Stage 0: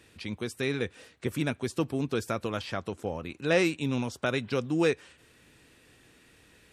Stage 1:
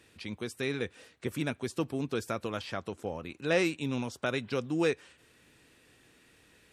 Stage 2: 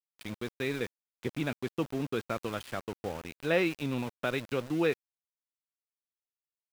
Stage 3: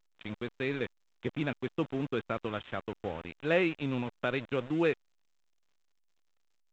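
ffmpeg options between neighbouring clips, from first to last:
-af "lowshelf=f=120:g=-4,volume=-2.5dB"
-af "lowpass=f=4k:w=0.5412,lowpass=f=4k:w=1.3066,aeval=exprs='val(0)*gte(abs(val(0)),0.0106)':c=same"
-af "aresample=8000,aresample=44100" -ar 16000 -c:a pcm_alaw

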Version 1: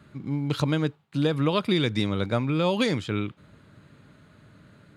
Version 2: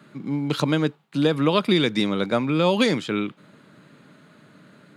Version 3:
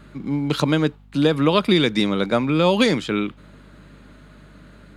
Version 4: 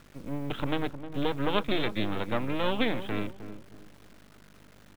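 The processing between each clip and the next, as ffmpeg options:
-af "highpass=f=160:w=0.5412,highpass=f=160:w=1.3066,volume=4.5dB"
-af "aeval=exprs='val(0)+0.00316*(sin(2*PI*50*n/s)+sin(2*PI*2*50*n/s)/2+sin(2*PI*3*50*n/s)/3+sin(2*PI*4*50*n/s)/4+sin(2*PI*5*50*n/s)/5)':c=same,volume=2.5dB"
-filter_complex "[0:a]aresample=8000,aeval=exprs='max(val(0),0)':c=same,aresample=44100,acrusher=bits=7:mix=0:aa=0.000001,asplit=2[a][b];[b]adelay=310,lowpass=f=820:p=1,volume=-10dB,asplit=2[c][d];[d]adelay=310,lowpass=f=820:p=1,volume=0.34,asplit=2[e][f];[f]adelay=310,lowpass=f=820:p=1,volume=0.34,asplit=2[g][h];[h]adelay=310,lowpass=f=820:p=1,volume=0.34[i];[a][c][e][g][i]amix=inputs=5:normalize=0,volume=-7dB"

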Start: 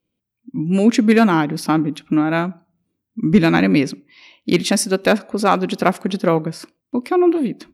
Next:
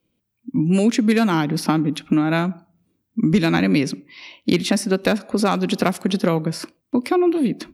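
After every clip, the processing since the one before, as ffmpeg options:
-filter_complex "[0:a]acrossover=split=190|3200[a][b][c];[a]acompressor=threshold=-29dB:ratio=4[d];[b]acompressor=threshold=-24dB:ratio=4[e];[c]acompressor=threshold=-35dB:ratio=4[f];[d][e][f]amix=inputs=3:normalize=0,volume=5.5dB"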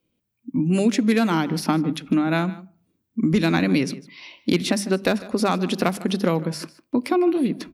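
-filter_complex "[0:a]bandreject=f=50:t=h:w=6,bandreject=f=100:t=h:w=6,bandreject=f=150:t=h:w=6,bandreject=f=200:t=h:w=6,asplit=2[a][b];[b]adelay=151.6,volume=-18dB,highshelf=f=4k:g=-3.41[c];[a][c]amix=inputs=2:normalize=0,volume=-2dB"

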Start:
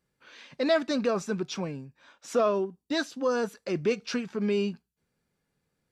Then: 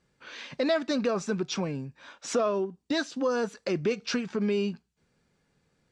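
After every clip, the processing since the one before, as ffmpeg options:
-af "lowpass=f=8.3k:w=0.5412,lowpass=f=8.3k:w=1.3066,acompressor=threshold=-38dB:ratio=2,volume=7.5dB"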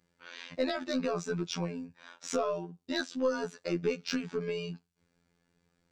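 -af "afftfilt=real='hypot(re,im)*cos(PI*b)':imag='0':win_size=2048:overlap=0.75,aeval=exprs='0.211*(cos(1*acos(clip(val(0)/0.211,-1,1)))-cos(1*PI/2))+0.0106*(cos(4*acos(clip(val(0)/0.211,-1,1)))-cos(4*PI/2))':c=same"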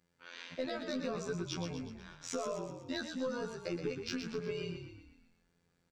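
-filter_complex "[0:a]acompressor=threshold=-32dB:ratio=3,asplit=2[a][b];[b]asplit=6[c][d][e][f][g][h];[c]adelay=122,afreqshift=-35,volume=-7dB[i];[d]adelay=244,afreqshift=-70,volume=-12.7dB[j];[e]adelay=366,afreqshift=-105,volume=-18.4dB[k];[f]adelay=488,afreqshift=-140,volume=-24dB[l];[g]adelay=610,afreqshift=-175,volume=-29.7dB[m];[h]adelay=732,afreqshift=-210,volume=-35.4dB[n];[i][j][k][l][m][n]amix=inputs=6:normalize=0[o];[a][o]amix=inputs=2:normalize=0,volume=-3dB"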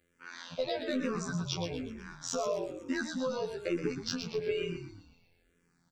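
-filter_complex "[0:a]asplit=2[a][b];[b]afreqshift=-1.1[c];[a][c]amix=inputs=2:normalize=1,volume=7dB"

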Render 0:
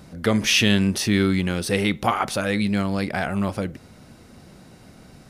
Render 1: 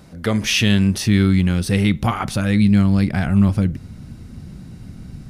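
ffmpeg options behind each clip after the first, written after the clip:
-af "asubboost=boost=7.5:cutoff=210"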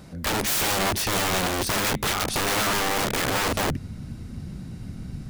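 -af "aeval=exprs='(mod(8.91*val(0)+1,2)-1)/8.91':c=same"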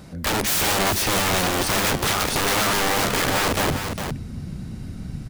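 -af "aecho=1:1:406:0.422,volume=2.5dB"

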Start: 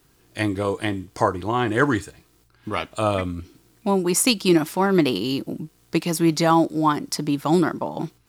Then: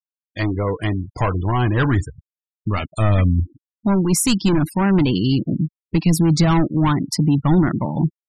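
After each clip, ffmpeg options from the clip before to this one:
-af "asoftclip=type=tanh:threshold=-19dB,afftfilt=real='re*gte(hypot(re,im),0.0251)':imag='im*gte(hypot(re,im),0.0251)':win_size=1024:overlap=0.75,asubboost=boost=7.5:cutoff=160,volume=4.5dB"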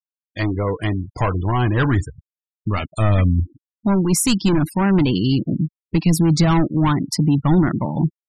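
-af anull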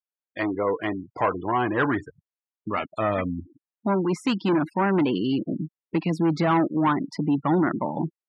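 -af "highpass=310,lowpass=2.1k"

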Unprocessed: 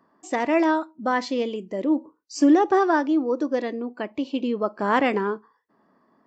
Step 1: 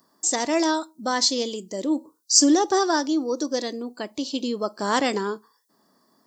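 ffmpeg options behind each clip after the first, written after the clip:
-af "aexciter=amount=12.4:drive=4.4:freq=3.8k,volume=-2dB"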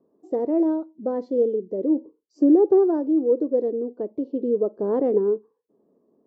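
-af "lowpass=f=450:t=q:w=4,volume=-2.5dB"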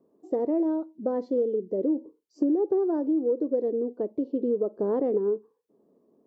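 -af "acompressor=threshold=-22dB:ratio=5"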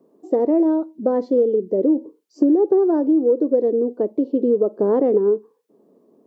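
-af "highpass=140,volume=8.5dB"

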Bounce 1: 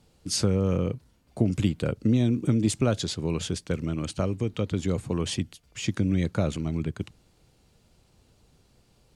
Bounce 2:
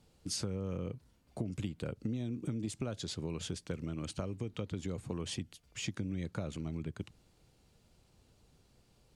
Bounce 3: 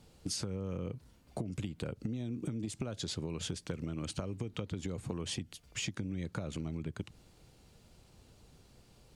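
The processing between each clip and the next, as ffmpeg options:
-af "acompressor=threshold=-30dB:ratio=4,volume=-5dB"
-af "acompressor=threshold=-40dB:ratio=6,volume=6dB"

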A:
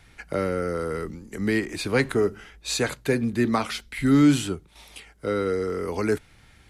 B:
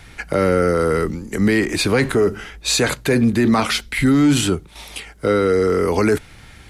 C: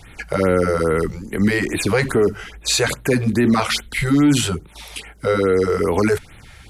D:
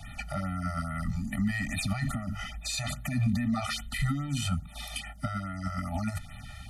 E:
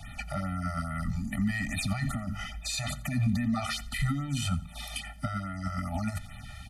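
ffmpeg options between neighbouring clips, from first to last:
-af "acontrast=64,alimiter=limit=-13dB:level=0:latency=1:release=16,volume=5dB"
-af "afftfilt=real='re*(1-between(b*sr/1024,220*pow(6200/220,0.5+0.5*sin(2*PI*2.4*pts/sr))/1.41,220*pow(6200/220,0.5+0.5*sin(2*PI*2.4*pts/sr))*1.41))':imag='im*(1-between(b*sr/1024,220*pow(6200/220,0.5+0.5*sin(2*PI*2.4*pts/sr))/1.41,220*pow(6200/220,0.5+0.5*sin(2*PI*2.4*pts/sr))*1.41))':win_size=1024:overlap=0.75"
-filter_complex "[0:a]alimiter=limit=-17dB:level=0:latency=1:release=38,acrossover=split=140[a][b];[b]acompressor=threshold=-30dB:ratio=2[c];[a][c]amix=inputs=2:normalize=0,afftfilt=real='re*eq(mod(floor(b*sr/1024/290),2),0)':imag='im*eq(mod(floor(b*sr/1024/290),2),0)':win_size=1024:overlap=0.75"
-af "aecho=1:1:87|174|261:0.0891|0.0312|0.0109"

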